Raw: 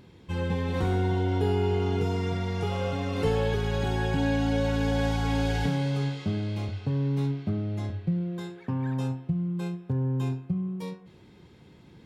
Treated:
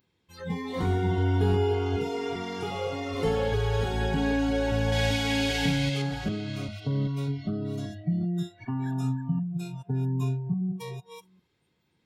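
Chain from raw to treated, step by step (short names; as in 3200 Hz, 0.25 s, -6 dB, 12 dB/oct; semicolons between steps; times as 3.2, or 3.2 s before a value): reverse delay 0.393 s, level -7 dB; 4.92–6.02 resonant high shelf 1700 Hz +7 dB, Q 1.5; spectral noise reduction 23 dB; mismatched tape noise reduction encoder only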